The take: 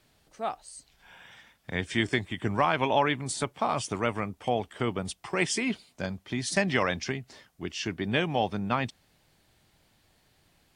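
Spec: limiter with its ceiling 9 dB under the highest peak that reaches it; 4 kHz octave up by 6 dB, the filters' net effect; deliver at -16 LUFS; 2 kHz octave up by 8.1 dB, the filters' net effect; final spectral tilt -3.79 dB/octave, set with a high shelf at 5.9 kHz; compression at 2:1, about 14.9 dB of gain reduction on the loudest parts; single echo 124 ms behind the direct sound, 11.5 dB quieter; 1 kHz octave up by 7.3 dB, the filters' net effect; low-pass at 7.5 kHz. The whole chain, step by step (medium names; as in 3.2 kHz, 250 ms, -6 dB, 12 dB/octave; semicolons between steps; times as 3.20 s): low-pass 7.5 kHz; peaking EQ 1 kHz +7.5 dB; peaking EQ 2 kHz +6.5 dB; peaking EQ 4 kHz +7.5 dB; treble shelf 5.9 kHz -7 dB; compression 2:1, threshold -42 dBFS; peak limiter -25.5 dBFS; delay 124 ms -11.5 dB; trim +23.5 dB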